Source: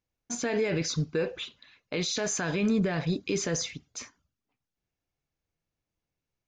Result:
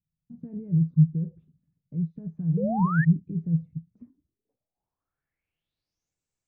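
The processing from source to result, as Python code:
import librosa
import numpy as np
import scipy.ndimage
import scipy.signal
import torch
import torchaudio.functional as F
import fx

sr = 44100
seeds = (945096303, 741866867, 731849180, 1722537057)

y = fx.filter_sweep_lowpass(x, sr, from_hz=160.0, to_hz=7800.0, start_s=3.82, end_s=6.16, q=6.9)
y = fx.spec_paint(y, sr, seeds[0], shape='rise', start_s=2.57, length_s=0.48, low_hz=440.0, high_hz=1900.0, level_db=-26.0)
y = y * librosa.db_to_amplitude(-4.0)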